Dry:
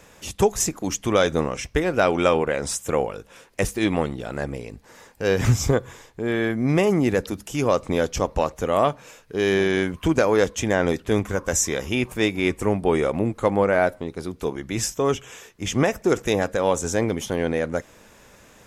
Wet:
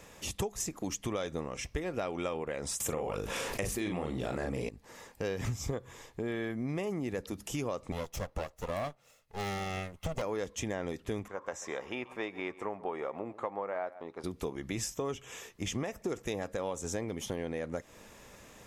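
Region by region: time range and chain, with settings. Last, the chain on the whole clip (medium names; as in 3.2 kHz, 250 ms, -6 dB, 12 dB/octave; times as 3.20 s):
2.80–4.69 s: doubling 39 ms -4 dB + level flattener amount 70%
7.92–10.22 s: comb filter that takes the minimum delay 1.5 ms + treble shelf 12 kHz +5 dB + upward expansion, over -43 dBFS
11.28–14.24 s: band-pass filter 980 Hz, Q 1.1 + delay 135 ms -20.5 dB
whole clip: band-stop 1.5 kHz, Q 11; compression 5:1, threshold -30 dBFS; trim -3 dB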